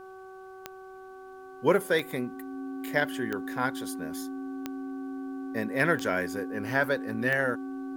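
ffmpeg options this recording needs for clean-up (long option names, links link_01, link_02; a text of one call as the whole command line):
ffmpeg -i in.wav -af "adeclick=threshold=4,bandreject=frequency=378.9:width_type=h:width=4,bandreject=frequency=757.8:width_type=h:width=4,bandreject=frequency=1136.7:width_type=h:width=4,bandreject=frequency=1515.6:width_type=h:width=4,bandreject=frequency=270:width=30,agate=range=-21dB:threshold=-38dB" out.wav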